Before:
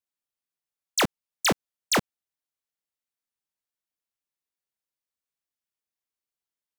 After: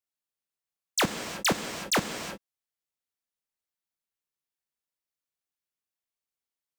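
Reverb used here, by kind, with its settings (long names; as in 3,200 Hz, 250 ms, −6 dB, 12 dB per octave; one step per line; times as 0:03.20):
reverb whose tail is shaped and stops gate 390 ms flat, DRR 6.5 dB
level −2.5 dB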